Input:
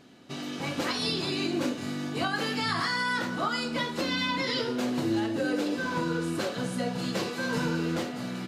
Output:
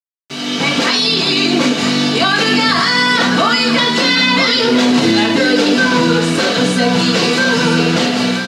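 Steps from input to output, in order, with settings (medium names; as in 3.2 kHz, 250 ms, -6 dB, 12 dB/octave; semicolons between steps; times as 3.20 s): treble shelf 2.8 kHz +12 dB; comb 4.4 ms, depth 36%; peak limiter -21 dBFS, peak gain reduction 9.5 dB; level rider gain up to 13 dB; bit crusher 5-bit; band-pass 110–4800 Hz; on a send: delay 982 ms -9 dB; on the sum: trim +4.5 dB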